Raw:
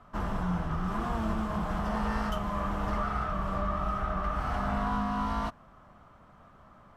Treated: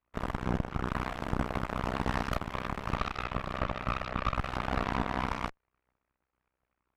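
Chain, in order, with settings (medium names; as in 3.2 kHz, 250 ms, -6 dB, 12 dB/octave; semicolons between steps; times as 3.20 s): AM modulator 63 Hz, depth 80%; Chebyshev shaper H 2 -8 dB, 3 -44 dB, 6 -20 dB, 7 -17 dB, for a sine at -19.5 dBFS; trim +1.5 dB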